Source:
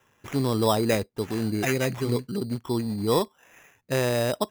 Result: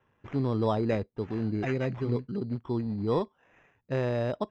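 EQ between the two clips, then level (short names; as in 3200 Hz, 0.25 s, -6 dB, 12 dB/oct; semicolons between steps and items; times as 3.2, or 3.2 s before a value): air absorption 94 m; tape spacing loss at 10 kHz 22 dB; low shelf 130 Hz +3.5 dB; -3.5 dB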